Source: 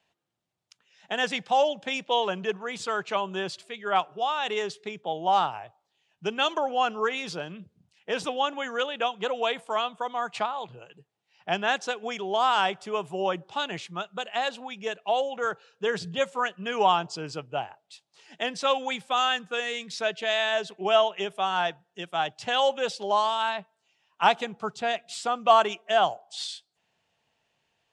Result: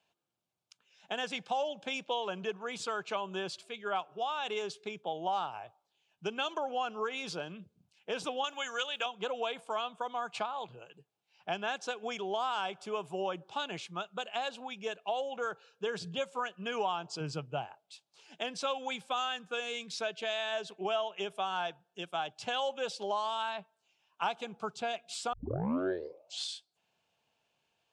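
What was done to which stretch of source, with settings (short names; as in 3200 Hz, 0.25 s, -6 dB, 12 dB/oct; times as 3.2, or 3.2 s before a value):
8.44–9.06 tilt +4 dB/oct
17.2–17.66 bell 150 Hz +9.5 dB 0.8 oct
25.33 tape start 1.12 s
whole clip: low shelf 110 Hz -6.5 dB; compressor 3:1, threshold -28 dBFS; notch 1900 Hz, Q 6; gain -3.5 dB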